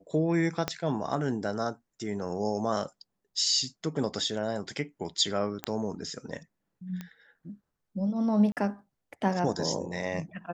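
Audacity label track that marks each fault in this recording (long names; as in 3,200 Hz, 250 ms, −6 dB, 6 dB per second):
0.680000	0.680000	click −13 dBFS
5.640000	5.640000	click −15 dBFS
7.010000	7.010000	click −24 dBFS
8.520000	8.570000	drop-out 48 ms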